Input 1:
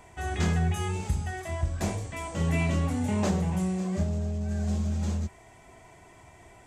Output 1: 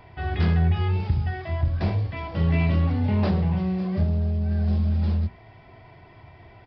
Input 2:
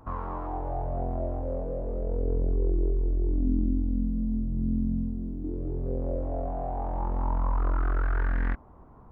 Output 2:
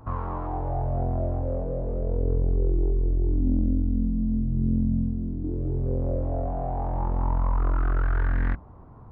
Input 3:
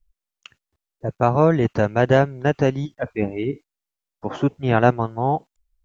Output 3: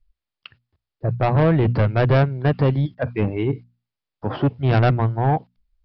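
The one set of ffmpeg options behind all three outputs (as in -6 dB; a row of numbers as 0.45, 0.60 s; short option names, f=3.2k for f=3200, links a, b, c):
-af "equalizer=f=110:t=o:w=0.98:g=9.5,bandreject=f=60:t=h:w=6,bandreject=f=120:t=h:w=6,bandreject=f=180:t=h:w=6,bandreject=f=240:t=h:w=6,aresample=11025,asoftclip=type=tanh:threshold=-13.5dB,aresample=44100,volume=2dB"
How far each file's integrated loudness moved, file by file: +5.0, +3.0, +0.5 LU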